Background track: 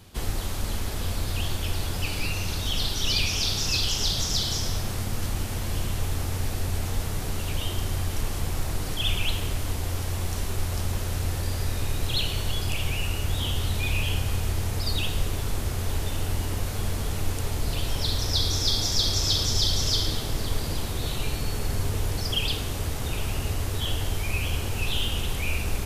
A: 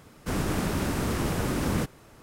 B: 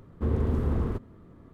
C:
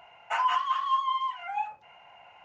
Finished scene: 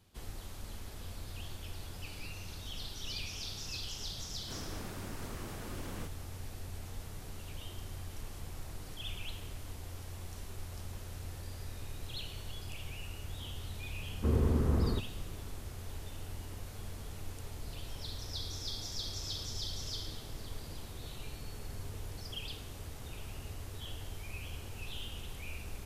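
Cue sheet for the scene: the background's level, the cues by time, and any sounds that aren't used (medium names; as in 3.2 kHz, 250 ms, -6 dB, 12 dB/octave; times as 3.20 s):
background track -16 dB
4.22 s: add A -15.5 dB + bass shelf 160 Hz -8.5 dB
14.02 s: add B -2.5 dB
not used: C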